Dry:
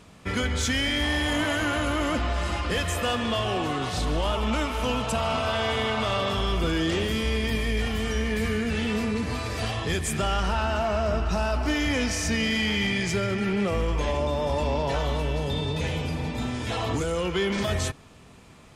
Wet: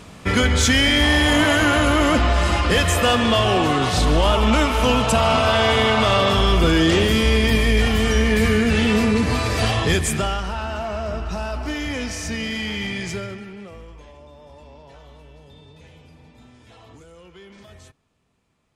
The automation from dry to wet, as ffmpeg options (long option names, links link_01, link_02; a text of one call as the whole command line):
ffmpeg -i in.wav -af "volume=9dB,afade=type=out:start_time=9.86:duration=0.57:silence=0.298538,afade=type=out:start_time=13.11:duration=0.35:silence=0.316228,afade=type=out:start_time=13.46:duration=0.64:silence=0.421697" out.wav